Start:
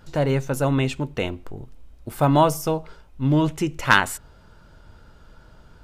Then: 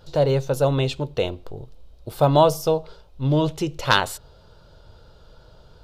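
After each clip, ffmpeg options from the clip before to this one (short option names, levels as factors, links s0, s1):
-af "equalizer=f=125:t=o:w=1:g=3,equalizer=f=250:t=o:w=1:g=-7,equalizer=f=500:t=o:w=1:g=8,equalizer=f=2000:t=o:w=1:g=-8,equalizer=f=4000:t=o:w=1:g=10,equalizer=f=8000:t=o:w=1:g=-4,volume=0.891"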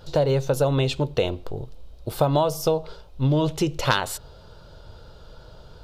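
-af "acompressor=threshold=0.0891:ratio=6,volume=1.58"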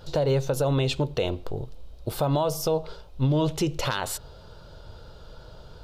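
-af "alimiter=limit=0.178:level=0:latency=1:release=82"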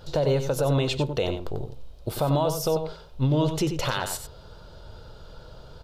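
-filter_complex "[0:a]asplit=2[s0][s1];[s1]adelay=93.29,volume=0.398,highshelf=f=4000:g=-2.1[s2];[s0][s2]amix=inputs=2:normalize=0"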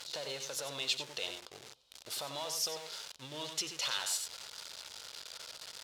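-af "aeval=exprs='val(0)+0.5*0.0282*sgn(val(0))':c=same,bandpass=f=5200:t=q:w=0.9:csg=0,volume=0.841"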